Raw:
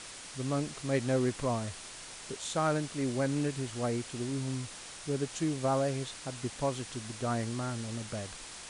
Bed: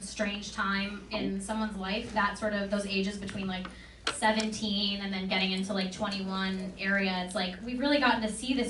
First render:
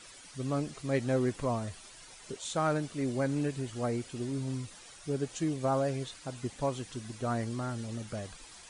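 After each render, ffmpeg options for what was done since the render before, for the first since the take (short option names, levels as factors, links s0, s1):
-af "afftdn=nr=11:nf=-47"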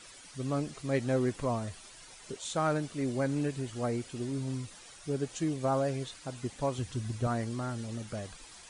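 -filter_complex "[0:a]asettb=1/sr,asplit=3[s0][s1][s2];[s0]atrim=end=6.784[s3];[s1]atrim=start=6.78:end=7.27,asetpts=PTS-STARTPTS,afade=t=in:d=0.004:c=qsin,afade=t=out:st=0.486:d=0.004:c=qsin,equalizer=f=83:w=1.1:g=14.5[s4];[s2]atrim=start=7.266[s5];[s3][s4]acrossfade=d=0.004:c1=hsin:c2=qsin[s6];[s6][s5]acrossfade=d=0.004:c1=qsin:c2=hsin"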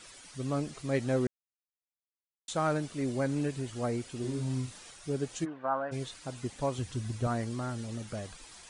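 -filter_complex "[0:a]asettb=1/sr,asplit=3[s0][s1][s2];[s0]atrim=end=4.204[s3];[s1]atrim=start=4.2:end=4.91,asetpts=PTS-STARTPTS,afade=t=in:d=0.004:c=qsin,afade=t=out:st=0.706:d=0.004:c=qsin,asplit=2[s4][s5];[s5]adelay=39,volume=0.596[s6];[s4][s6]amix=inputs=2:normalize=0,atrim=end_sample=31311[s7];[s2]atrim=start=4.906[s8];[s3][s7]acrossfade=d=0.004:c1=hsin:c2=qsin[s9];[s9][s8]acrossfade=d=0.004:c1=qsin:c2=hsin,asplit=3[s10][s11][s12];[s10]afade=t=out:st=5.44:d=0.02[s13];[s11]highpass=390,equalizer=f=400:t=q:w=4:g=-10,equalizer=f=560:t=q:w=4:g=-4,equalizer=f=980:t=q:w=4:g=4,equalizer=f=1500:t=q:w=4:g=8,equalizer=f=2200:t=q:w=4:g=-9,lowpass=f=2300:w=0.5412,lowpass=f=2300:w=1.3066,afade=t=in:st=5.44:d=0.02,afade=t=out:st=5.91:d=0.02[s14];[s12]afade=t=in:st=5.91:d=0.02[s15];[s13][s14][s15]amix=inputs=3:normalize=0,asplit=3[s16][s17][s18];[s16]atrim=end=1.27,asetpts=PTS-STARTPTS,afade=t=out:st=1.266:d=0.004:c=hsin[s19];[s17]atrim=start=1.27:end=2.48,asetpts=PTS-STARTPTS,volume=0[s20];[s18]atrim=start=2.48,asetpts=PTS-STARTPTS,afade=t=in:d=0.004:c=hsin[s21];[s19][s20][s21]concat=n=3:v=0:a=1"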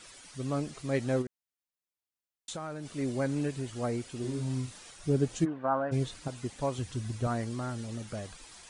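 -filter_complex "[0:a]asplit=3[s0][s1][s2];[s0]afade=t=out:st=1.21:d=0.02[s3];[s1]acompressor=threshold=0.0178:ratio=6:attack=3.2:release=140:knee=1:detection=peak,afade=t=in:st=1.21:d=0.02,afade=t=out:st=2.85:d=0.02[s4];[s2]afade=t=in:st=2.85:d=0.02[s5];[s3][s4][s5]amix=inputs=3:normalize=0,asettb=1/sr,asplit=3[s6][s7][s8];[s6]atrim=end=4.994[s9];[s7]atrim=start=4.99:end=6.28,asetpts=PTS-STARTPTS,afade=t=in:d=0.004:c=qsin,afade=t=out:st=1.286:d=0.004:c=qsin,lowshelf=f=410:g=9[s10];[s8]atrim=start=6.276[s11];[s9][s10]acrossfade=d=0.004:c1=hsin:c2=qsin[s12];[s12][s11]acrossfade=d=0.004:c1=qsin:c2=hsin"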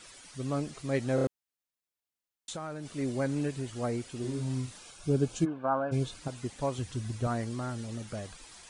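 -filter_complex "[0:a]asettb=1/sr,asplit=3[s0][s1][s2];[s0]atrim=end=4.774[s3];[s1]atrim=start=4.77:end=6.19,asetpts=PTS-STARTPTS,afade=t=in:d=0.004:c=qsin,afade=t=out:st=1.416:d=0.004:c=qsin,asuperstop=centerf=1900:order=8:qfactor=6.3[s4];[s2]atrim=start=6.186[s5];[s3][s4]acrossfade=d=0.004:c1=hsin:c2=qsin[s6];[s6][s5]acrossfade=d=0.004:c1=qsin:c2=hsin,asplit=5[s7][s8][s9][s10][s11];[s7]atrim=end=1.182[s12];[s8]atrim=start=1.148:end=1.182[s13];[s9]atrim=start=1.148:end=1.182[s14];[s10]atrim=start=1.148:end=1.182[s15];[s11]atrim=start=1.268[s16];[s12][s13]acrossfade=d=0.004:c1=hsin:c2=hsin[s17];[s17][s14]acrossfade=d=0.004:c1=hsin:c2=hsin[s18];[s18][s15]acrossfade=d=0.004:c1=hsin:c2=hsin[s19];[s19][s16]acrossfade=d=0.004:c1=hsin:c2=hsin"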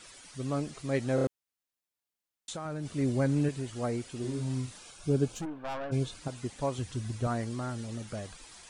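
-filter_complex "[0:a]asettb=1/sr,asplit=3[s0][s1][s2];[s0]atrim=end=2.654[s3];[s1]atrim=start=2.65:end=3.49,asetpts=PTS-STARTPTS,afade=t=in:d=0.004:c=qsin,afade=t=out:st=0.836:d=0.004:c=qsin,equalizer=f=71:w=0.36:g=8[s4];[s2]atrim=start=3.486[s5];[s3][s4]acrossfade=d=0.004:c1=hsin:c2=qsin[s6];[s6][s5]acrossfade=d=0.004:c1=qsin:c2=hsin,asettb=1/sr,asplit=3[s7][s8][s9];[s7]atrim=end=5.324[s10];[s8]atrim=start=5.32:end=5.9,asetpts=PTS-STARTPTS,afade=t=in:d=0.004:c=qsin,afade=t=out:st=0.576:d=0.004:c=qsin,aeval=exprs='(tanh(44.7*val(0)+0.4)-tanh(0.4))/44.7':c=same[s11];[s9]atrim=start=5.896[s12];[s10][s11]acrossfade=d=0.004:c1=hsin:c2=qsin[s13];[s13][s12]acrossfade=d=0.004:c1=qsin:c2=hsin"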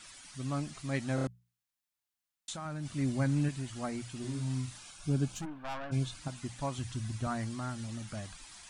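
-af "equalizer=f=450:t=o:w=0.74:g=-13,bandreject=f=60:t=h:w=6,bandreject=f=120:t=h:w=6,bandreject=f=180:t=h:w=6"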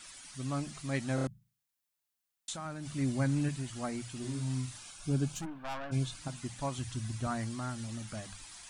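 -af "highshelf=f=8400:g=5,bandreject=f=50:t=h:w=6,bandreject=f=100:t=h:w=6,bandreject=f=150:t=h:w=6,bandreject=f=200:t=h:w=6"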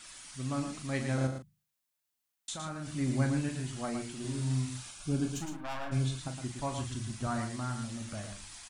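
-filter_complex "[0:a]asplit=2[s0][s1];[s1]adelay=39,volume=0.376[s2];[s0][s2]amix=inputs=2:normalize=0,asplit=2[s3][s4];[s4]aecho=0:1:113:0.447[s5];[s3][s5]amix=inputs=2:normalize=0"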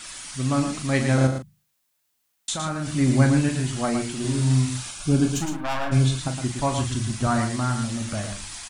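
-af "volume=3.76"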